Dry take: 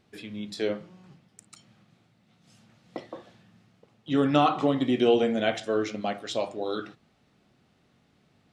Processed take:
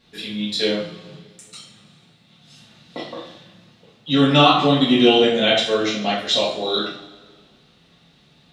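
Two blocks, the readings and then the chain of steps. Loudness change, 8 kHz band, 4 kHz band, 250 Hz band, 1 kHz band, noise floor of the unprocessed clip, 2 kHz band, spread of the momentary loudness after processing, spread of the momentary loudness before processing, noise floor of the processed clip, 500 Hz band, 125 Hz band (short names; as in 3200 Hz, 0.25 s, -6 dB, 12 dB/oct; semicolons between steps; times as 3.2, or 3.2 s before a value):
+9.0 dB, n/a, +17.5 dB, +8.0 dB, +8.0 dB, -66 dBFS, +11.5 dB, 20 LU, 20 LU, -55 dBFS, +7.0 dB, +10.5 dB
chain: bell 3700 Hz +11.5 dB 0.88 oct; two-slope reverb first 0.49 s, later 1.8 s, from -18 dB, DRR -7.5 dB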